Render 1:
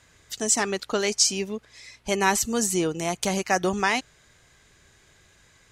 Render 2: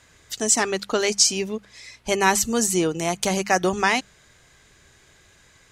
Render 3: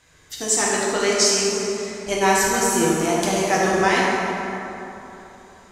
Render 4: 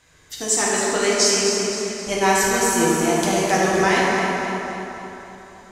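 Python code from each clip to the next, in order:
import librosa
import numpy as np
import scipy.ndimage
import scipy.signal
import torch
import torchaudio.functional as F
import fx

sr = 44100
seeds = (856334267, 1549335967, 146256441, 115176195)

y1 = fx.hum_notches(x, sr, base_hz=50, count=4)
y1 = F.gain(torch.from_numpy(y1), 3.0).numpy()
y2 = fx.rev_plate(y1, sr, seeds[0], rt60_s=3.4, hf_ratio=0.5, predelay_ms=0, drr_db=-6.0)
y2 = F.gain(torch.from_numpy(y2), -4.0).numpy()
y3 = fx.echo_feedback(y2, sr, ms=261, feedback_pct=51, wet_db=-8.5)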